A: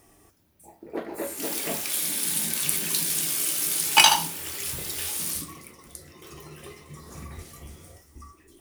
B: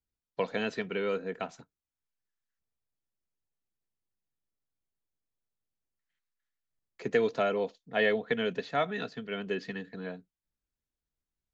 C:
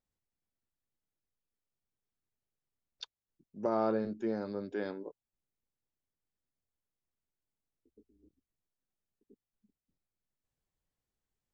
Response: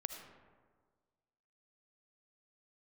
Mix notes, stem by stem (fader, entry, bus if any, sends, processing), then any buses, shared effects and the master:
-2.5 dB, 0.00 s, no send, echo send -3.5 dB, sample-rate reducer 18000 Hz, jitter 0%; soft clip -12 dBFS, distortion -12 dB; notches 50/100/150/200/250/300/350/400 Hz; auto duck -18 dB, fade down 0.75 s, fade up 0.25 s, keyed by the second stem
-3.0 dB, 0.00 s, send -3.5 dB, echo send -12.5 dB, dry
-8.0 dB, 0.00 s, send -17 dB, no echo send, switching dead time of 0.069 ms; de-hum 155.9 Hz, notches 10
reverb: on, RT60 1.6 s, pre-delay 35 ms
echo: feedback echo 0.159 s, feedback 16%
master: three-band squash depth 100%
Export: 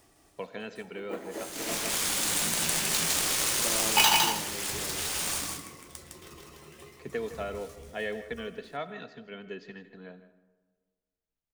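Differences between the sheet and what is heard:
stem B -3.0 dB -> -11.0 dB; master: missing three-band squash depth 100%

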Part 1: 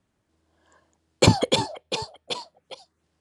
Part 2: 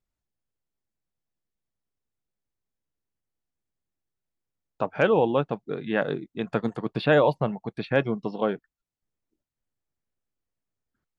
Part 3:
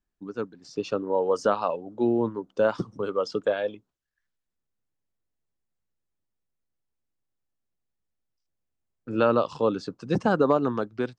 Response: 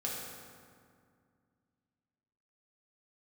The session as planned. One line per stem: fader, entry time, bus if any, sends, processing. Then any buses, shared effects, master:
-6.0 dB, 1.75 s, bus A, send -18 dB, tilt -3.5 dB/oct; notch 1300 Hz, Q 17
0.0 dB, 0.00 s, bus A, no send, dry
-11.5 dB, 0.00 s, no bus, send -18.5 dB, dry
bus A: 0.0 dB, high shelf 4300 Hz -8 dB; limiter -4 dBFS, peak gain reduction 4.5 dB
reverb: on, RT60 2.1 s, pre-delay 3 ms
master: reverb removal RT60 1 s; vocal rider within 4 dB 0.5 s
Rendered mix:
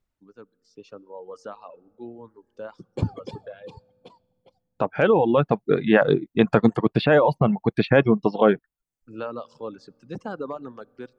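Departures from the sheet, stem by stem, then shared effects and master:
stem 1 -6.0 dB -> -14.0 dB; stem 2 0.0 dB -> +10.5 dB

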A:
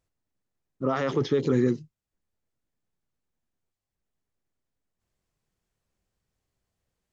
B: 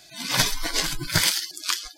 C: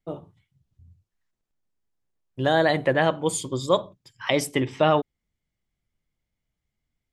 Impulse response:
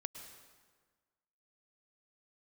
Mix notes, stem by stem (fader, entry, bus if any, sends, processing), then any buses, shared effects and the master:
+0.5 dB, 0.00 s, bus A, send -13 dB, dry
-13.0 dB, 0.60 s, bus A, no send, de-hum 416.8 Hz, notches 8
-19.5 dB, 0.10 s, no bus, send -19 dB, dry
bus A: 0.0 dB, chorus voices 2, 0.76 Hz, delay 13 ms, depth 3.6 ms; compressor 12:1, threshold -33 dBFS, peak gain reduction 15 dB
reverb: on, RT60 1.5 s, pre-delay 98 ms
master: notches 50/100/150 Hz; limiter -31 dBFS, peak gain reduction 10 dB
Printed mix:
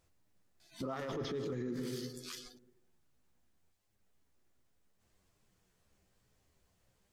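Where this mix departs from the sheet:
stem A +0.5 dB -> +9.0 dB; stem C: muted

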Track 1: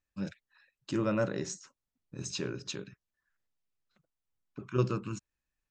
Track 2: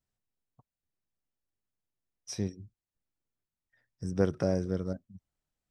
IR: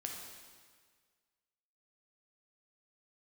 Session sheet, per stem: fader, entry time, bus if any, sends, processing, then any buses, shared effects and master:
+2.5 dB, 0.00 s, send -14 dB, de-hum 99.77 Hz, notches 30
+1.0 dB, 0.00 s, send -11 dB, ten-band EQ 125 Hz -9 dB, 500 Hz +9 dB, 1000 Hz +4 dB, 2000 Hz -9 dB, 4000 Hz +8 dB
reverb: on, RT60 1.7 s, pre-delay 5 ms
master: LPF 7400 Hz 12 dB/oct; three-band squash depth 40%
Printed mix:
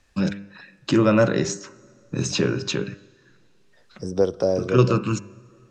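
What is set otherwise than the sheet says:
stem 1 +2.5 dB -> +13.5 dB; reverb return -6.5 dB

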